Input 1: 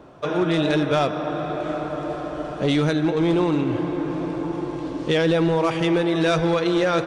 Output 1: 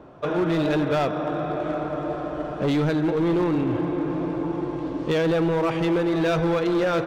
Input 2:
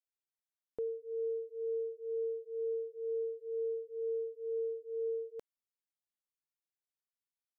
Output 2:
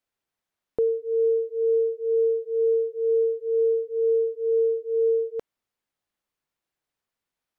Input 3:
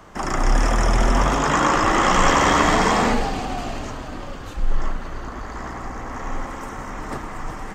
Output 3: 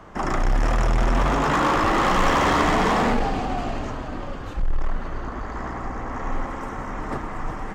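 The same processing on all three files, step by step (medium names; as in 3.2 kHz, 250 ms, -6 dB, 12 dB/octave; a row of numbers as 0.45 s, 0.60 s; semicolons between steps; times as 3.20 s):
treble shelf 3.8 kHz -11.5 dB; in parallel at -4 dB: wavefolder -19.5 dBFS; on the sum: normalise loudness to -24 LUFS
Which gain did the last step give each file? -4.0 dB, +10.5 dB, -2.5 dB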